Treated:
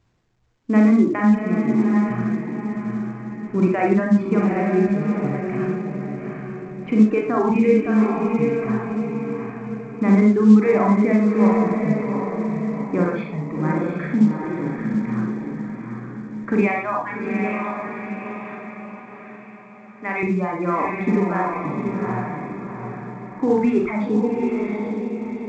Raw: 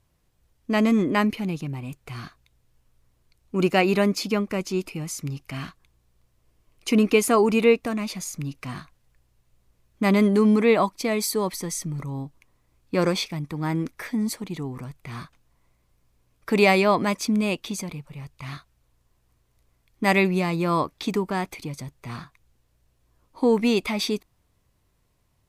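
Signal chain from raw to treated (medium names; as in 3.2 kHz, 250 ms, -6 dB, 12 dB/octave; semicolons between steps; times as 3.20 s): low-pass 1.8 kHz 24 dB/octave; reverb removal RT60 1.1 s; 16.61–20.23 s: high-pass 1.4 kHz 6 dB/octave; reverb removal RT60 1.1 s; peak limiter -16.5 dBFS, peak gain reduction 7.5 dB; echo that smears into a reverb 785 ms, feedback 45%, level -3.5 dB; reverberation RT60 0.50 s, pre-delay 36 ms, DRR 0 dB; trim +2 dB; A-law 128 kbps 16 kHz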